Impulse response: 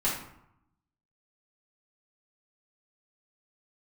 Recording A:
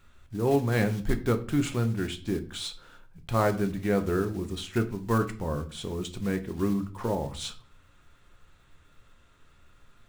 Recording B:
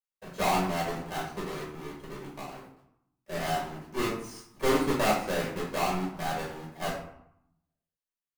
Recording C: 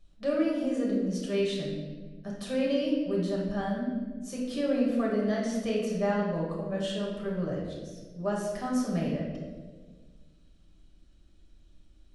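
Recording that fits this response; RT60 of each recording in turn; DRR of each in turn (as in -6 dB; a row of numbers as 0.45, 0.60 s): B; 0.45, 0.80, 1.5 s; 6.5, -7.5, -4.5 dB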